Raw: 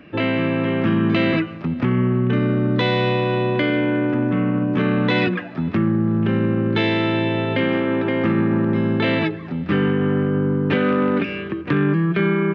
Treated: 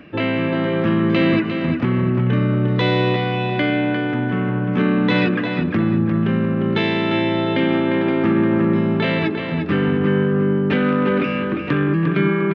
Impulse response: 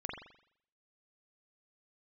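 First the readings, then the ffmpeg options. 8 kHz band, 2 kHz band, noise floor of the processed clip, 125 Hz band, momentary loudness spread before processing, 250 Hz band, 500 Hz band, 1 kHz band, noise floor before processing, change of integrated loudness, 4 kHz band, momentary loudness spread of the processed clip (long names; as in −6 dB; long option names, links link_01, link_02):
can't be measured, +1.0 dB, −23 dBFS, +1.0 dB, 4 LU, +1.0 dB, +1.0 dB, +1.5 dB, −32 dBFS, +1.0 dB, +1.0 dB, 4 LU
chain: -filter_complex "[0:a]areverse,acompressor=mode=upward:threshold=-21dB:ratio=2.5,areverse,asplit=2[link_01][link_02];[link_02]adelay=351,lowpass=frequency=4200:poles=1,volume=-5.5dB,asplit=2[link_03][link_04];[link_04]adelay=351,lowpass=frequency=4200:poles=1,volume=0.35,asplit=2[link_05][link_06];[link_06]adelay=351,lowpass=frequency=4200:poles=1,volume=0.35,asplit=2[link_07][link_08];[link_08]adelay=351,lowpass=frequency=4200:poles=1,volume=0.35[link_09];[link_01][link_03][link_05][link_07][link_09]amix=inputs=5:normalize=0"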